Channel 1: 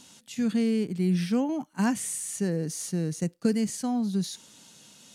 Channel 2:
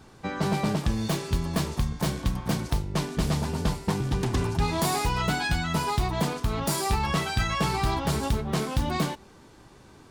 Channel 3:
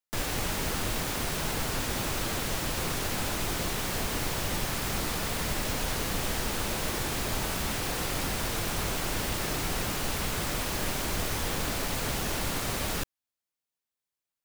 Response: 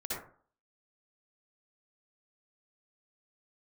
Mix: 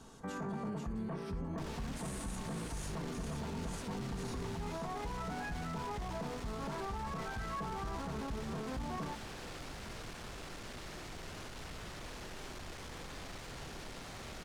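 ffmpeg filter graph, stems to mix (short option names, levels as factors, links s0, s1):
-filter_complex "[0:a]alimiter=level_in=1.12:limit=0.0631:level=0:latency=1,volume=0.891,acompressor=threshold=0.0158:ratio=3,volume=0.224,asplit=3[s0][s1][s2];[s1]volume=0.473[s3];[s2]volume=0.708[s4];[1:a]lowpass=f=1700:w=0.5412,lowpass=f=1700:w=1.3066,aecho=1:1:4.4:0.41,acompressor=threshold=0.02:ratio=2,volume=0.596[s5];[2:a]lowpass=6500,asoftclip=type=tanh:threshold=0.0178,adelay=1450,volume=0.251,asplit=2[s6][s7];[s7]volume=0.531[s8];[3:a]atrim=start_sample=2205[s9];[s3][s8]amix=inputs=2:normalize=0[s10];[s10][s9]afir=irnorm=-1:irlink=0[s11];[s4]aecho=0:1:488:1[s12];[s0][s5][s6][s11][s12]amix=inputs=5:normalize=0,alimiter=level_in=2.66:limit=0.0631:level=0:latency=1:release=10,volume=0.376"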